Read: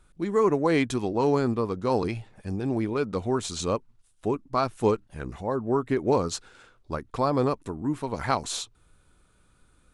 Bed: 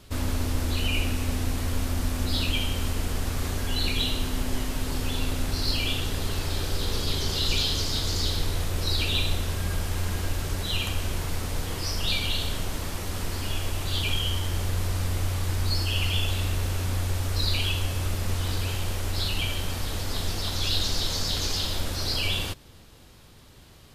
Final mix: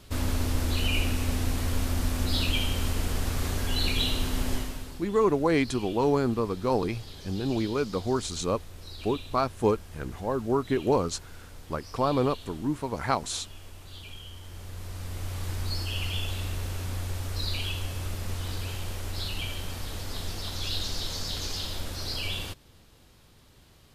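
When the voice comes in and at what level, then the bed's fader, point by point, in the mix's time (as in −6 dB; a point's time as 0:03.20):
4.80 s, −1.0 dB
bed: 0:04.53 −0.5 dB
0:05.06 −17 dB
0:14.34 −17 dB
0:15.44 −5.5 dB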